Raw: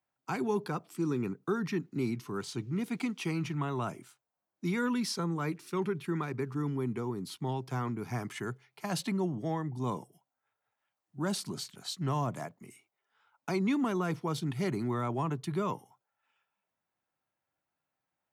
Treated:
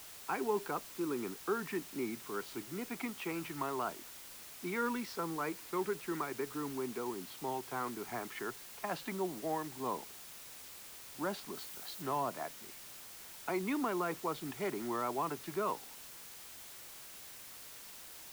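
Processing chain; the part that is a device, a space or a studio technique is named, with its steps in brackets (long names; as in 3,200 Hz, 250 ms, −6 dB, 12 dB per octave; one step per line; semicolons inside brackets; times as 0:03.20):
wax cylinder (band-pass filter 370–2,400 Hz; tape wow and flutter; white noise bed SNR 11 dB)
0:11.55–0:12.02: high-shelf EQ 9,200 Hz +5 dB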